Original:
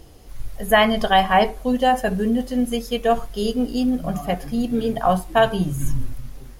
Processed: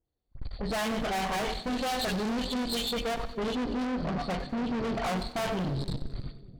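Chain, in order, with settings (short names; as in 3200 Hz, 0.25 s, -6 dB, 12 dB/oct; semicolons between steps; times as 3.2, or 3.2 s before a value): nonlinear frequency compression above 3100 Hz 4:1; gate -28 dBFS, range -41 dB; bell 3600 Hz -9 dB 1.1 oct, from 1.45 s +7.5 dB, from 2.9 s -8 dB; dispersion highs, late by 57 ms, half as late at 2100 Hz; one-sided clip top -25.5 dBFS; tube stage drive 34 dB, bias 0.5; split-band echo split 500 Hz, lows 0.297 s, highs 94 ms, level -14 dB; gain +5 dB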